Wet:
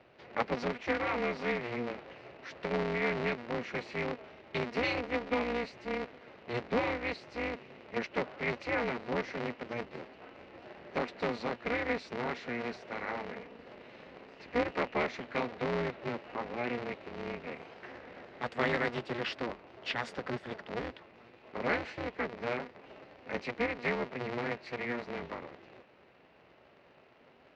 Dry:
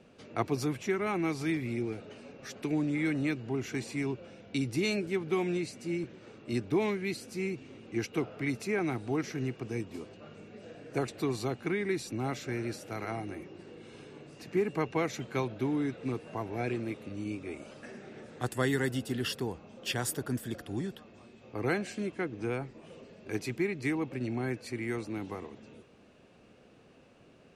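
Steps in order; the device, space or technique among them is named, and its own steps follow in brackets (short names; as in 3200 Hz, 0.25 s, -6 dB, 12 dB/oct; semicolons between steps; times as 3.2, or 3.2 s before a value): ring modulator pedal into a guitar cabinet (polarity switched at an audio rate 120 Hz; speaker cabinet 100–4200 Hz, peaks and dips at 100 Hz -10 dB, 150 Hz -4 dB, 210 Hz -4 dB, 310 Hz -6 dB, 2000 Hz +4 dB, 3400 Hz -4 dB)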